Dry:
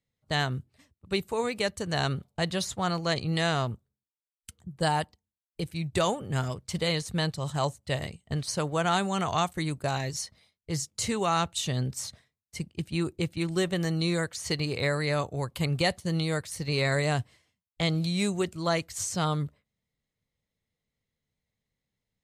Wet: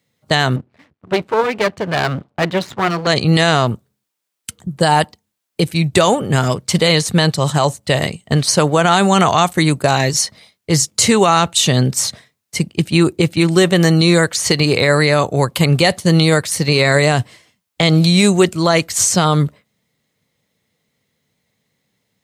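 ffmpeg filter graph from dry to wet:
ffmpeg -i in.wav -filter_complex "[0:a]asettb=1/sr,asplit=3[link_01][link_02][link_03];[link_01]atrim=end=0.564[link_04];[link_02]atrim=start=0.56:end=3.07,asetpts=PTS-STARTPTS,afade=type=in:duration=0.004:curve=qsin,afade=type=out:start_time=2.506:duration=0.004:curve=qsin,lowpass=2400,aeval=exprs='max(val(0),0)':channel_layout=same[link_05];[link_03]atrim=start=3.066[link_06];[link_04][link_05]acrossfade=duration=0.004:curve1=hsin:curve2=qsin[link_07];[link_07][link_06]acrossfade=duration=0.004:curve1=qsin:curve2=hsin,highpass=140,alimiter=level_in=19dB:limit=-1dB:release=50:level=0:latency=1,volume=-1dB" out.wav

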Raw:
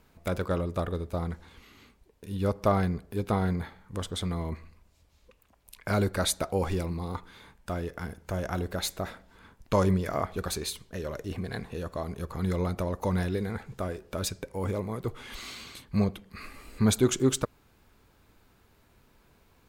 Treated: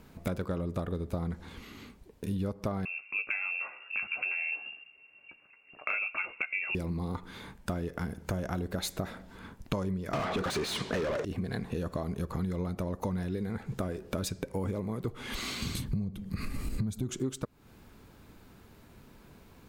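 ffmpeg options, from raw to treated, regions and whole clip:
ffmpeg -i in.wav -filter_complex "[0:a]asettb=1/sr,asplit=3[link_01][link_02][link_03];[link_01]atrim=end=2.854[link_04];[link_02]atrim=start=2.85:end=6.75,asetpts=PTS-STARTPTS,afade=type=in:duration=0.004:curve=qsin,afade=type=out:start_time=3.896:duration=0.004:curve=qsin,equalizer=frequency=1000:width_type=o:width=0.21:gain=-13.5,asplit=2[link_05][link_06];[link_06]adelay=14,volume=-8dB[link_07];[link_05][link_07]amix=inputs=2:normalize=0,atrim=end_sample=171990,lowpass=frequency=2400:width_type=q:width=0.5098,lowpass=frequency=2400:width_type=q:width=0.6013,lowpass=frequency=2400:width_type=q:width=0.9,lowpass=frequency=2400:width_type=q:width=2.563,afreqshift=-2800[link_08];[link_03]atrim=start=6.746[link_09];[link_04][link_08]acrossfade=duration=0.004:curve1=hsin:curve2=qsin[link_10];[link_10][link_09]acrossfade=duration=0.004:curve1=qsin:curve2=hsin,asettb=1/sr,asplit=3[link_11][link_12][link_13];[link_11]atrim=end=10.134[link_14];[link_12]atrim=start=10.13:end=11.25,asetpts=PTS-STARTPTS,afade=type=in:duration=0.004:curve=qsin,afade=type=out:start_time=1.116:duration=0.004:curve=qsin,lowpass=9500,asplit=2[link_15][link_16];[link_16]highpass=frequency=720:poles=1,volume=36dB,asoftclip=type=tanh:threshold=-15dB[link_17];[link_15][link_17]amix=inputs=2:normalize=0,lowpass=frequency=2700:poles=1,volume=-6dB[link_18];[link_13]atrim=start=11.246[link_19];[link_14][link_18]acrossfade=duration=0.004:curve1=hsin:curve2=qsin[link_20];[link_20][link_19]acrossfade=duration=0.004:curve1=qsin:curve2=hsin,asettb=1/sr,asplit=3[link_21][link_22][link_23];[link_21]atrim=end=15.624[link_24];[link_22]atrim=start=15.62:end=17.1,asetpts=PTS-STARTPTS,afade=type=in:duration=0.004:curve=qsin,afade=type=out:start_time=1.476:duration=0.004:curve=qsin,bass=frequency=250:gain=15,treble=frequency=4000:gain=6,acompressor=threshold=-30dB:ratio=2:attack=3.2:release=140:knee=1:detection=peak[link_25];[link_23]atrim=start=17.096[link_26];[link_24][link_25]acrossfade=duration=0.004:curve1=hsin:curve2=qsin[link_27];[link_27][link_26]acrossfade=duration=0.004:curve1=qsin:curve2=hsin,equalizer=frequency=200:width=0.71:gain=6.5,acompressor=threshold=-34dB:ratio=12,volume=4.5dB" out.wav

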